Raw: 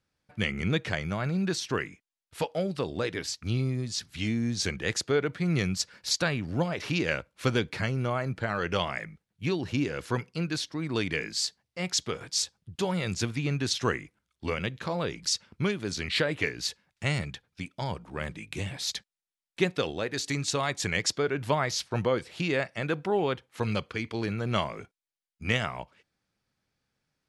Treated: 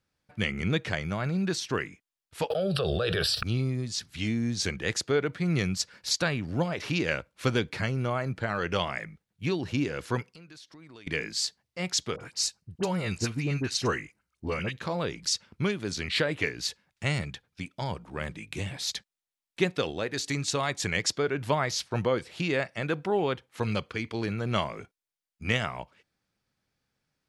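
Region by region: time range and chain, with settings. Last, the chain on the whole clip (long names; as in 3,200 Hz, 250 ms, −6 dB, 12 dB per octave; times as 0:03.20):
0:02.50–0:03.43: phaser with its sweep stopped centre 1,400 Hz, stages 8 + envelope flattener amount 100%
0:10.22–0:11.07: low-shelf EQ 330 Hz −6.5 dB + downward compressor 4 to 1, threshold −49 dBFS
0:12.16–0:14.78: notch filter 3,400 Hz, Q 6.4 + all-pass dispersion highs, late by 45 ms, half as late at 1,400 Hz
whole clip: no processing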